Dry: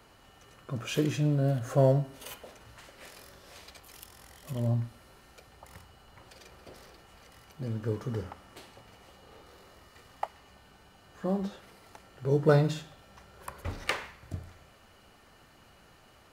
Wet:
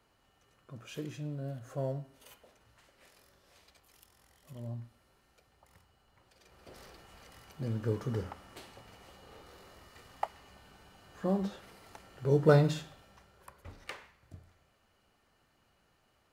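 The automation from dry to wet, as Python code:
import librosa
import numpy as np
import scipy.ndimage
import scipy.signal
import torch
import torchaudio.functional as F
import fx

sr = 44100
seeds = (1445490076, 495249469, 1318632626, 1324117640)

y = fx.gain(x, sr, db=fx.line((6.34, -12.5), (6.81, -0.5), (12.84, -0.5), (13.59, -13.0)))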